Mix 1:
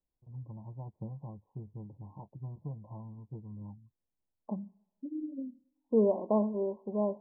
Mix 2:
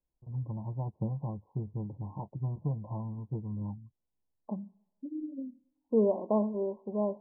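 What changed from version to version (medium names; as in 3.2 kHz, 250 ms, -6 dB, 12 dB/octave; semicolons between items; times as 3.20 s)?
first voice +8.0 dB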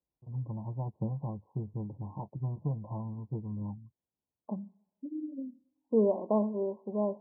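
master: add high-pass 80 Hz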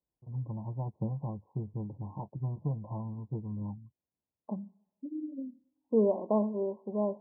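no change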